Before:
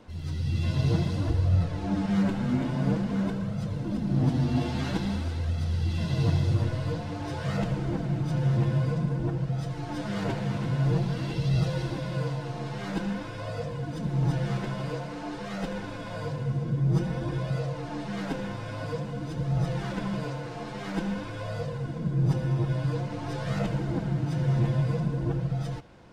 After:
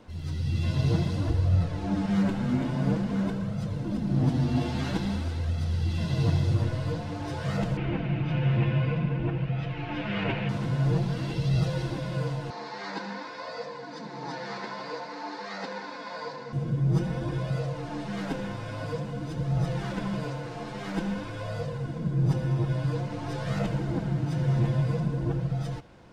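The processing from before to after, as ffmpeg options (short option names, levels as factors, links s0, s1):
-filter_complex "[0:a]asettb=1/sr,asplit=3[s0][s1][s2];[s0]atrim=end=7.774[s3];[s1]atrim=start=7.77:end=10.49,asetpts=PTS-STARTPTS,afade=t=in:d=0.004:c=qsin,afade=t=out:st=2.716:d=0.004:c=qsin,lowpass=f=2600:t=q:w=4.3[s4];[s2]atrim=start=10.486[s5];[s3][s4]acrossfade=d=0.004:c1=hsin:c2=qsin[s6];[s6][s5]acrossfade=d=0.004:c1=qsin:c2=hsin,asettb=1/sr,asplit=3[s7][s8][s9];[s7]atrim=end=12.504[s10];[s8]atrim=start=12.5:end=16.53,asetpts=PTS-STARTPTS,afade=t=in:d=0.004:c=qsin,afade=t=out:st=4.026:d=0.004:c=qsin,highpass=f=250:w=0.5412,highpass=f=250:w=1.3066,equalizer=f=330:t=q:w=4:g=-8,equalizer=f=620:t=q:w=4:g=-4,equalizer=f=930:t=q:w=4:g=7,equalizer=f=1900:t=q:w=4:g=5,equalizer=f=3000:t=q:w=4:g=-7,equalizer=f=4400:t=q:w=4:g=9,lowpass=f=6500:w=0.5412,lowpass=f=6500:w=1.3066[s11];[s9]atrim=start=16.526[s12];[s10][s11]acrossfade=d=0.004:c1=hsin:c2=qsin[s13];[s13][s12]acrossfade=d=0.004:c1=qsin:c2=hsin"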